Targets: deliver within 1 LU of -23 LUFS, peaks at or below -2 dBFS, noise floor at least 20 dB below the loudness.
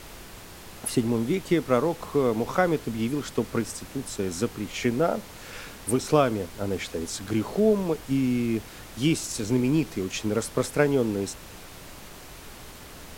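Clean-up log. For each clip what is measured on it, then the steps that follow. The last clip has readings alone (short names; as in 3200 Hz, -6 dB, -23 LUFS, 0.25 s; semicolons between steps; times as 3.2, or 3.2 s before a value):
noise floor -44 dBFS; noise floor target -47 dBFS; loudness -26.5 LUFS; peak -6.0 dBFS; loudness target -23.0 LUFS
-> noise print and reduce 6 dB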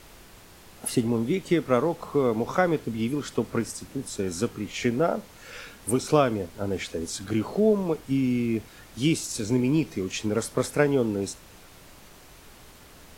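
noise floor -50 dBFS; loudness -26.5 LUFS; peak -6.0 dBFS; loudness target -23.0 LUFS
-> gain +3.5 dB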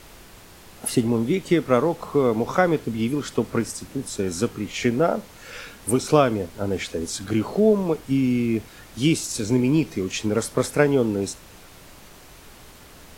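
loudness -23.0 LUFS; peak -2.5 dBFS; noise floor -47 dBFS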